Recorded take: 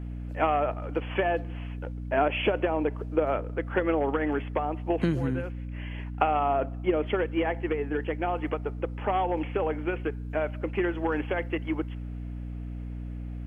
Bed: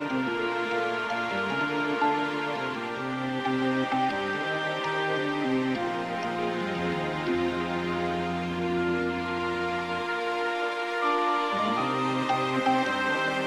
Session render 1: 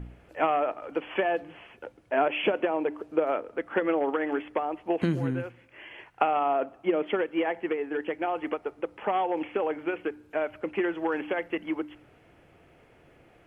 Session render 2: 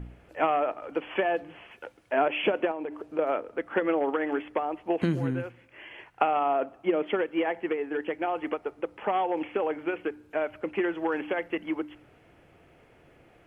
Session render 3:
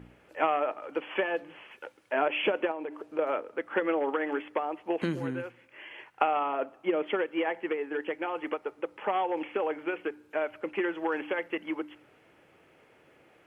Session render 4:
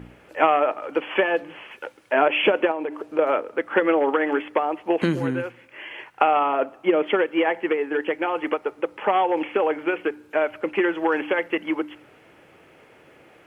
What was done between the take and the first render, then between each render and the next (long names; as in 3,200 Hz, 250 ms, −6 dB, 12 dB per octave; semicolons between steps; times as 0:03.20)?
hum removal 60 Hz, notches 5
0:01.71–0:02.13: tilt shelving filter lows −5 dB, about 750 Hz; 0:02.71–0:03.19: downward compressor, threshold −30 dBFS
high-pass filter 330 Hz 6 dB per octave; notch filter 700 Hz, Q 12
level +8.5 dB; brickwall limiter −3 dBFS, peak gain reduction 2 dB